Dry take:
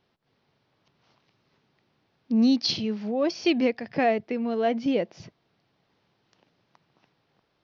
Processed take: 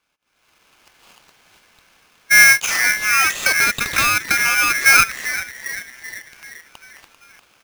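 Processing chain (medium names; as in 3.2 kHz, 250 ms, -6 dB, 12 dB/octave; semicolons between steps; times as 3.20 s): high-pass 480 Hz 6 dB/octave; peak limiter -21 dBFS, peak gain reduction 8 dB; 2.52–4.81 s: compression, threshold -32 dBFS, peak gain reduction 7 dB; low-pass 2.8 kHz 6 dB/octave; frequency-shifting echo 392 ms, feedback 55%, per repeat -130 Hz, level -13 dB; level rider gain up to 16.5 dB; polarity switched at an audio rate 1.9 kHz; trim +2.5 dB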